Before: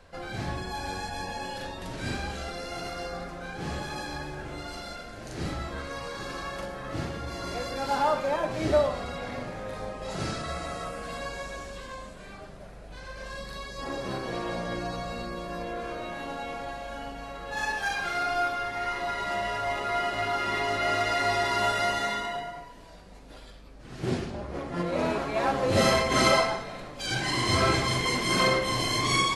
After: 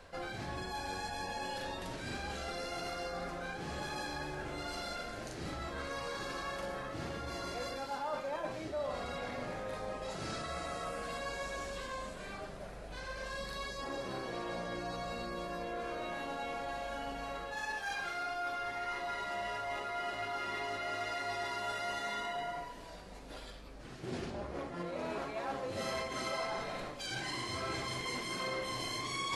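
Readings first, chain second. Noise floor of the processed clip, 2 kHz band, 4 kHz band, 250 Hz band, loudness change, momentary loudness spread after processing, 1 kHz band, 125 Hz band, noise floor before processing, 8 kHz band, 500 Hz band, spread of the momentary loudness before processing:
−47 dBFS, −9.0 dB, −10.0 dB, −10.5 dB, −10.0 dB, 5 LU, −9.0 dB, −12.0 dB, −45 dBFS, −10.0 dB, −9.5 dB, 15 LU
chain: reversed playback
downward compressor 6 to 1, threshold −37 dBFS, peak gain reduction 18 dB
reversed playback
bass and treble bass −4 dB, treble 0 dB
level +1 dB

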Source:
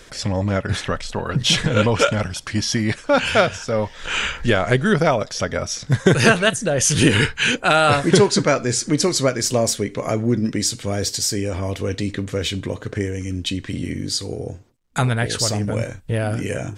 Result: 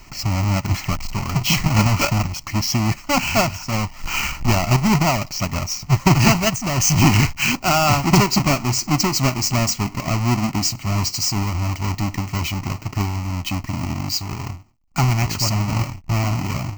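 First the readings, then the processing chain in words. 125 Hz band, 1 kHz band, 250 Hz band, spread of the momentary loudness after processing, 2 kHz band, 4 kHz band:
+3.5 dB, +1.5 dB, +0.5 dB, 9 LU, −2.5 dB, −1.0 dB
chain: each half-wave held at its own peak
phaser with its sweep stopped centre 2,400 Hz, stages 8
level −1 dB

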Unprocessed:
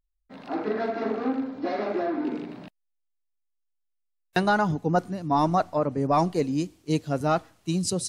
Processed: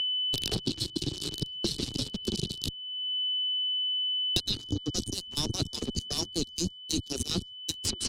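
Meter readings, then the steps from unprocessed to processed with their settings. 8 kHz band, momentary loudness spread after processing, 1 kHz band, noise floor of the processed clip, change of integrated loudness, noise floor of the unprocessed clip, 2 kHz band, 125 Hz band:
+4.0 dB, 7 LU, −23.5 dB, −47 dBFS, −3.5 dB, −77 dBFS, −13.5 dB, −5.0 dB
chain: harmonic-percussive split with one part muted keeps percussive
drawn EQ curve 110 Hz 0 dB, 220 Hz −12 dB, 720 Hz −28 dB, 1,700 Hz −28 dB, 4,300 Hz −3 dB
reversed playback
downward compressor 8 to 1, threshold −55 dBFS, peak gain reduction 25.5 dB
reversed playback
slap from a distant wall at 48 metres, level −24 dB
in parallel at −3 dB: fuzz pedal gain 51 dB, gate −58 dBFS
on the sum: flat-topped bell 1,100 Hz −15.5 dB 2.4 octaves
noise gate with hold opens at −27 dBFS
steady tone 3,000 Hz −45 dBFS
treble cut that deepens with the level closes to 2,500 Hz, closed at −18.5 dBFS
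multiband upward and downward compressor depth 100%

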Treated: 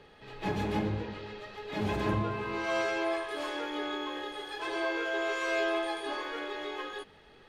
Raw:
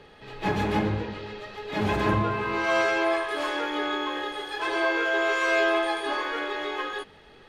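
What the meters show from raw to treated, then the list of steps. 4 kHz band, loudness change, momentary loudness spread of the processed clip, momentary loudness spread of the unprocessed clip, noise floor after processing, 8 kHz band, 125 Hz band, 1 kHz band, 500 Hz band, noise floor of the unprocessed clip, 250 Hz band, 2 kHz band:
−6.0 dB, −7.0 dB, 11 LU, 11 LU, −57 dBFS, −5.5 dB, −5.0 dB, −8.0 dB, −6.0 dB, −52 dBFS, −5.5 dB, −8.5 dB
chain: dynamic equaliser 1,400 Hz, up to −4 dB, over −36 dBFS, Q 0.76
level −5 dB

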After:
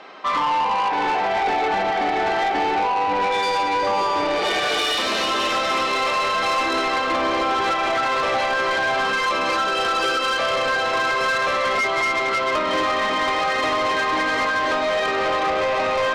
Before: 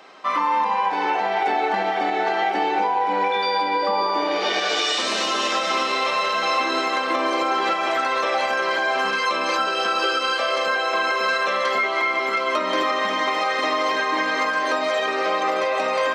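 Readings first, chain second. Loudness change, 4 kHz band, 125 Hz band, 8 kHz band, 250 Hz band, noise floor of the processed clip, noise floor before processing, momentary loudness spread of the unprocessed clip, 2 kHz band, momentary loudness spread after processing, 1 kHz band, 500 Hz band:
+1.0 dB, +0.5 dB, can't be measured, +0.5 dB, +1.0 dB, −22 dBFS, −24 dBFS, 1 LU, +1.0 dB, 1 LU, +1.0 dB, +1.0 dB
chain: low-pass filter 4,400 Hz
soft clipping −22 dBFS, distortion −12 dB
level +5 dB

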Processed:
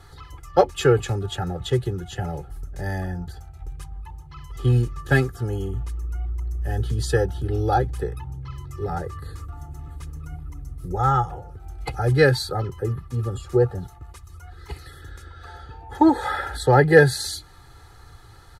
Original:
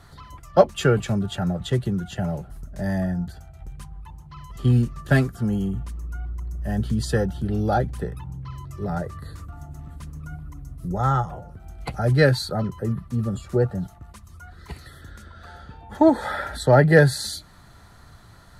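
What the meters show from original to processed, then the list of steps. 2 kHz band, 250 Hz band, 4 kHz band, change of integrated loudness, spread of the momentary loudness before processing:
+2.0 dB, −2.5 dB, +1.0 dB, 0.0 dB, 22 LU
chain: comb filter 2.4 ms, depth 83%
level −1 dB

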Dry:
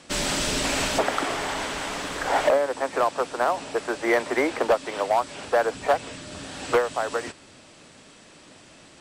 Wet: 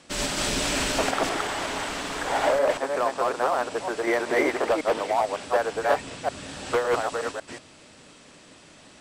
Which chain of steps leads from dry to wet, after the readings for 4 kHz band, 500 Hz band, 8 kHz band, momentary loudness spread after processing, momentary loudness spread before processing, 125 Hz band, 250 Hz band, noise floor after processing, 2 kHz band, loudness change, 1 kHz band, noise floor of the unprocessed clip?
−0.5 dB, −0.5 dB, −0.5 dB, 8 LU, 7 LU, −0.5 dB, −0.5 dB, −51 dBFS, −0.5 dB, −0.5 dB, −0.5 dB, −51 dBFS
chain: delay that plays each chunk backwards 185 ms, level 0 dB
level −3.5 dB

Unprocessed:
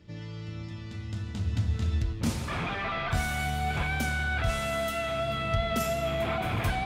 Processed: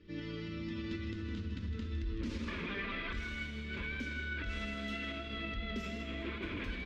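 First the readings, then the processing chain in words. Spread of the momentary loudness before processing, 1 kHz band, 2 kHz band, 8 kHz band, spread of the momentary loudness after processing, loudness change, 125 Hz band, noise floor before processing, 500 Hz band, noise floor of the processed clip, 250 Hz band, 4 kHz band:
11 LU, −17.0 dB, −7.5 dB, −20.0 dB, 2 LU, −9.5 dB, −12.0 dB, −39 dBFS, −13.5 dB, −43 dBFS, −4.5 dB, −7.5 dB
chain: camcorder AGC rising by 30 dB per second
dynamic equaliser 1,300 Hz, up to −8 dB, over −51 dBFS, Q 5.9
brickwall limiter −26 dBFS, peak gain reduction 10 dB
phaser with its sweep stopped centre 310 Hz, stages 4
flanger 0.94 Hz, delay 2.3 ms, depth 3.1 ms, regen +70%
high-frequency loss of the air 200 metres
single-tap delay 158 ms −9.5 dB
level +4.5 dB

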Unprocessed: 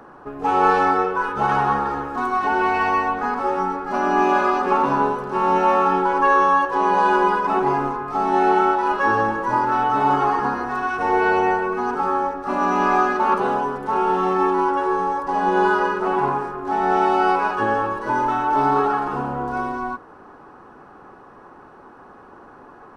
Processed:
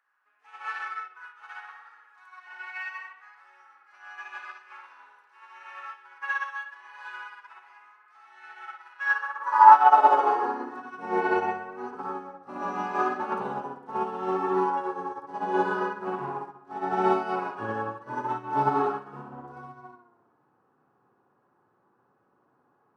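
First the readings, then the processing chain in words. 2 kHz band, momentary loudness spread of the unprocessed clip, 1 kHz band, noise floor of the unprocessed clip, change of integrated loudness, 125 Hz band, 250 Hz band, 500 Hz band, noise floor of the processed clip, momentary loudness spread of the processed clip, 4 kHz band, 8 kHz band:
−8.5 dB, 7 LU, −7.0 dB, −45 dBFS, −5.5 dB, below −10 dB, −12.0 dB, −10.5 dB, −69 dBFS, 20 LU, below −10 dB, can't be measured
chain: tape delay 61 ms, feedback 66%, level −3 dB, low-pass 3,100 Hz
high-pass filter sweep 1,900 Hz → 120 Hz, 0:09.04–0:11.44
expander for the loud parts 2.5 to 1, over −26 dBFS

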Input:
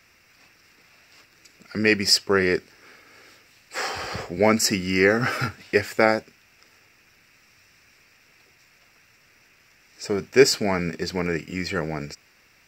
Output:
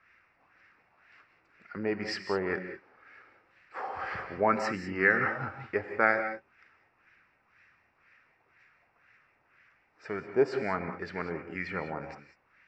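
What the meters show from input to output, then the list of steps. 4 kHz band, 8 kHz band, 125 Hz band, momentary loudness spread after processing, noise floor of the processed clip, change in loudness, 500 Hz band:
−21.0 dB, below −25 dB, −11.5 dB, 18 LU, −70 dBFS, −8.5 dB, −9.0 dB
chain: auto-filter low-pass sine 2 Hz 810–1,800 Hz
tilt shelving filter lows −5 dB, about 1,400 Hz
reverb whose tail is shaped and stops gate 220 ms rising, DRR 7.5 dB
level −7.5 dB

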